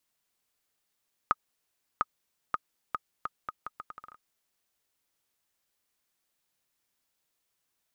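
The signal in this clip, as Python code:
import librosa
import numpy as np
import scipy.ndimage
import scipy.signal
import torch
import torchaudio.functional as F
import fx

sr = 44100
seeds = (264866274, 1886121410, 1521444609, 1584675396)

y = fx.bouncing_ball(sr, first_gap_s=0.7, ratio=0.76, hz=1250.0, decay_ms=33.0, level_db=-10.5)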